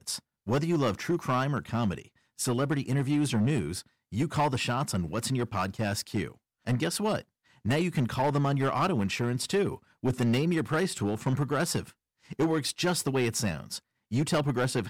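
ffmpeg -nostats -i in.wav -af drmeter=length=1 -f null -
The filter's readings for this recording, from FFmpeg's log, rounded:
Channel 1: DR: 3.9
Overall DR: 3.9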